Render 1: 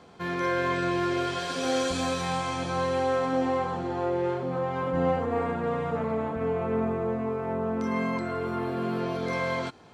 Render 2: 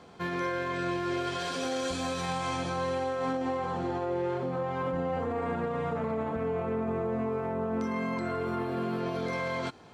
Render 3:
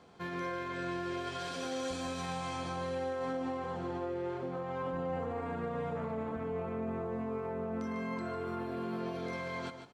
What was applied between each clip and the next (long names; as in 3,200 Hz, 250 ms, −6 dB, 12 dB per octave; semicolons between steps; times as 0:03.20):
brickwall limiter −23.5 dBFS, peak gain reduction 8.5 dB
single-tap delay 149 ms −9 dB; level −6.5 dB